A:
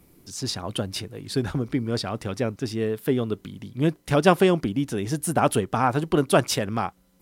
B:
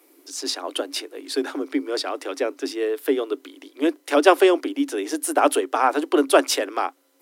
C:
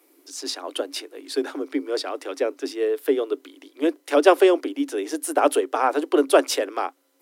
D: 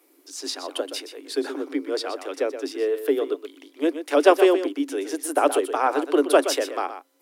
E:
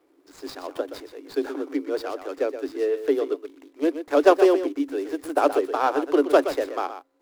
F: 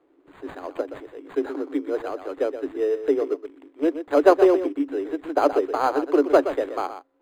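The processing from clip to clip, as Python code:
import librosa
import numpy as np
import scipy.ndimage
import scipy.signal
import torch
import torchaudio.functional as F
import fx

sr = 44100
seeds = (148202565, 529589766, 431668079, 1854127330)

y1 = scipy.signal.sosfilt(scipy.signal.cheby1(10, 1.0, 270.0, 'highpass', fs=sr, output='sos'), x)
y1 = y1 * 10.0 ** (4.0 / 20.0)
y2 = fx.dynamic_eq(y1, sr, hz=480.0, q=1.7, threshold_db=-30.0, ratio=4.0, max_db=5)
y2 = y2 * 10.0 ** (-3.0 / 20.0)
y3 = y2 + 10.0 ** (-10.5 / 20.0) * np.pad(y2, (int(123 * sr / 1000.0), 0))[:len(y2)]
y3 = y3 * 10.0 ** (-1.0 / 20.0)
y4 = scipy.ndimage.median_filter(y3, 15, mode='constant')
y5 = np.interp(np.arange(len(y4)), np.arange(len(y4))[::8], y4[::8])
y5 = y5 * 10.0 ** (1.0 / 20.0)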